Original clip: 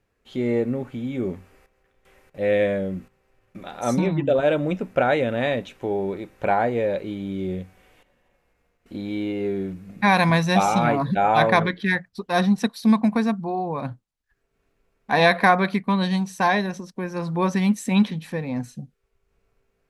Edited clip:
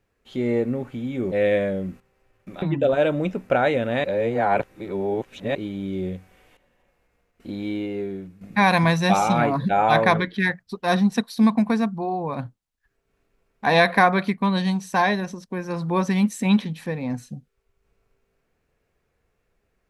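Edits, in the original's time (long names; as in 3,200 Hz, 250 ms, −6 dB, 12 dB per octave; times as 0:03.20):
0:01.32–0:02.40: remove
0:03.70–0:04.08: remove
0:05.50–0:07.01: reverse
0:09.13–0:09.87: fade out, to −9.5 dB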